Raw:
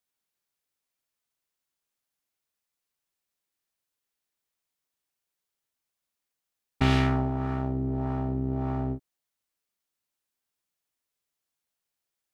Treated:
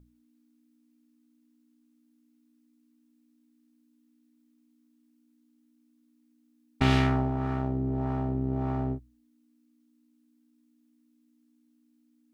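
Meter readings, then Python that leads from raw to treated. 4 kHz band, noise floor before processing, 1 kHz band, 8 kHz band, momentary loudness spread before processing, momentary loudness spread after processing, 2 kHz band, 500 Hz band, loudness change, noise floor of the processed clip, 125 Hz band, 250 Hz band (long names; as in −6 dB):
0.0 dB, below −85 dBFS, 0.0 dB, can't be measured, 8 LU, 8 LU, 0.0 dB, 0.0 dB, −0.5 dB, −67 dBFS, −0.5 dB, 0.0 dB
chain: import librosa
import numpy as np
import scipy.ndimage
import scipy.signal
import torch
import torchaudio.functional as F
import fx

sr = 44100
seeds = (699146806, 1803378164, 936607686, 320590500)

y = fx.add_hum(x, sr, base_hz=60, snr_db=21)
y = fx.hum_notches(y, sr, base_hz=60, count=3)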